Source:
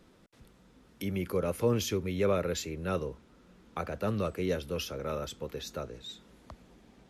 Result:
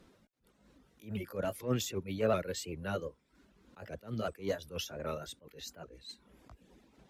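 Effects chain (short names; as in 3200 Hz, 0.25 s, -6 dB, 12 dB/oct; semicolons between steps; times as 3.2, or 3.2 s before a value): repeated pitch sweeps +2 st, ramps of 0.389 s; reverb removal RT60 0.67 s; added harmonics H 6 -35 dB, 7 -34 dB, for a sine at -16 dBFS; attack slew limiter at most 200 dB/s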